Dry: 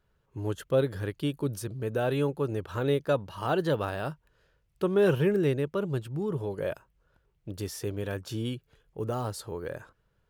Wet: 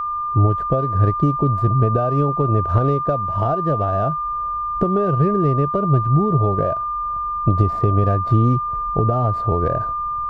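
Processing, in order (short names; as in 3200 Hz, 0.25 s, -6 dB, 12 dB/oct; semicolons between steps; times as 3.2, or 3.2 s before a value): median filter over 15 samples; recorder AGC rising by 8.1 dB/s; bell 670 Hz +15 dB 0.29 oct; compressor 10:1, threshold -28 dBFS, peak gain reduction 14 dB; RIAA curve playback; whine 1200 Hz -28 dBFS; gain +7 dB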